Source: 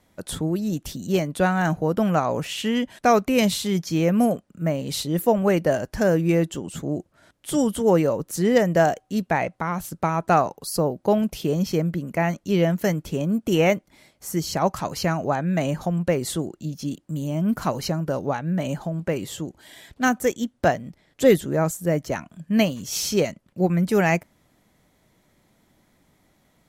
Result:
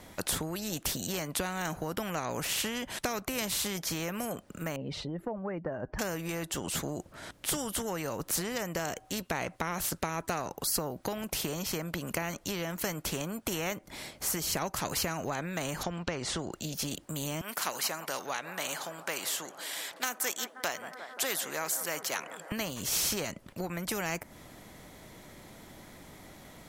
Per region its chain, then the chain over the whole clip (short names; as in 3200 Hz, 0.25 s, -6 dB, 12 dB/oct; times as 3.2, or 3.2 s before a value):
4.76–5.99 spectral contrast raised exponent 1.5 + LPF 1400 Hz
15.83–16.52 LPF 6000 Hz 24 dB/oct + careless resampling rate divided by 2×, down none, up filtered
17.41–22.52 HPF 960 Hz + analogue delay 0.176 s, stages 2048, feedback 81%, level -23.5 dB
whole clip: dynamic EQ 3500 Hz, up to -4 dB, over -39 dBFS, Q 0.77; compressor, threshold -26 dBFS; spectral compressor 2:1; gain +1.5 dB